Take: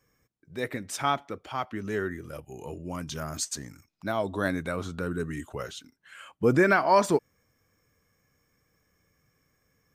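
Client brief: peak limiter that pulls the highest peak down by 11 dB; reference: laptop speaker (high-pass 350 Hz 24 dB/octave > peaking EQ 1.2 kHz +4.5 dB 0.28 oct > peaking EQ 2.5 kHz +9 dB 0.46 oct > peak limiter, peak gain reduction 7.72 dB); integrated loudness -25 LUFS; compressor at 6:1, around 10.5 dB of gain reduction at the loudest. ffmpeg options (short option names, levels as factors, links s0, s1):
-af "acompressor=threshold=0.0398:ratio=6,alimiter=level_in=1.41:limit=0.0631:level=0:latency=1,volume=0.708,highpass=f=350:w=0.5412,highpass=f=350:w=1.3066,equalizer=f=1200:t=o:w=0.28:g=4.5,equalizer=f=2500:t=o:w=0.46:g=9,volume=7.08,alimiter=limit=0.2:level=0:latency=1"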